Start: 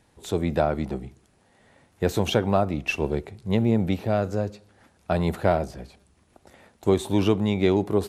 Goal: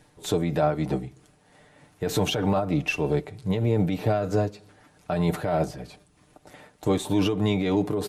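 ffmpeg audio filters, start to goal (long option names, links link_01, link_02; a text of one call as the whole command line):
ffmpeg -i in.wav -af "aecho=1:1:6.7:0.63,alimiter=limit=-17dB:level=0:latency=1:release=55,tremolo=f=3.2:d=0.4,volume=4dB" out.wav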